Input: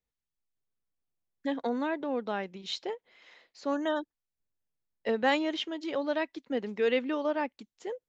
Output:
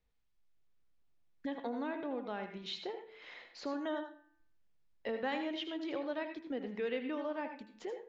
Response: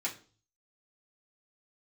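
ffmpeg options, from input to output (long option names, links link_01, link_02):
-filter_complex "[0:a]lowpass=4300,lowshelf=frequency=64:gain=9.5,bandreject=frequency=109.8:width_type=h:width=4,bandreject=frequency=219.6:width_type=h:width=4,bandreject=frequency=329.4:width_type=h:width=4,bandreject=frequency=439.2:width_type=h:width=4,bandreject=frequency=549:width_type=h:width=4,bandreject=frequency=658.8:width_type=h:width=4,bandreject=frequency=768.6:width_type=h:width=4,bandreject=frequency=878.4:width_type=h:width=4,bandreject=frequency=988.2:width_type=h:width=4,bandreject=frequency=1098:width_type=h:width=4,bandreject=frequency=1207.8:width_type=h:width=4,bandreject=frequency=1317.6:width_type=h:width=4,bandreject=frequency=1427.4:width_type=h:width=4,bandreject=frequency=1537.2:width_type=h:width=4,bandreject=frequency=1647:width_type=h:width=4,bandreject=frequency=1756.8:width_type=h:width=4,bandreject=frequency=1866.6:width_type=h:width=4,bandreject=frequency=1976.4:width_type=h:width=4,bandreject=frequency=2086.2:width_type=h:width=4,bandreject=frequency=2196:width_type=h:width=4,bandreject=frequency=2305.8:width_type=h:width=4,bandreject=frequency=2415.6:width_type=h:width=4,bandreject=frequency=2525.4:width_type=h:width=4,bandreject=frequency=2635.2:width_type=h:width=4,bandreject=frequency=2745:width_type=h:width=4,bandreject=frequency=2854.8:width_type=h:width=4,bandreject=frequency=2964.6:width_type=h:width=4,acompressor=threshold=-54dB:ratio=2,asplit=2[link_01][link_02];[1:a]atrim=start_sample=2205,adelay=78[link_03];[link_02][link_03]afir=irnorm=-1:irlink=0,volume=-10.5dB[link_04];[link_01][link_04]amix=inputs=2:normalize=0,volume=6dB"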